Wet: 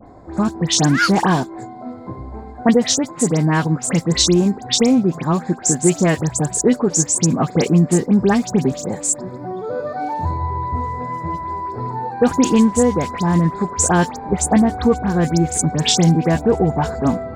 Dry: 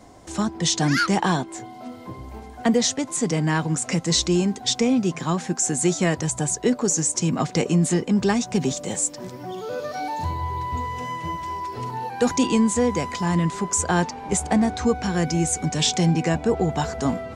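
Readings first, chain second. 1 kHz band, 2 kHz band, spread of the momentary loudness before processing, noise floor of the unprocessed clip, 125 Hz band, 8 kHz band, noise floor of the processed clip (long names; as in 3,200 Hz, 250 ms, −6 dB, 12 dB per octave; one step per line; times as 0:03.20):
+5.0 dB, +3.5 dB, 10 LU, −40 dBFS, +6.0 dB, +4.5 dB, −35 dBFS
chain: adaptive Wiener filter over 15 samples
all-pass dispersion highs, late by 72 ms, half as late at 2,700 Hz
level +6 dB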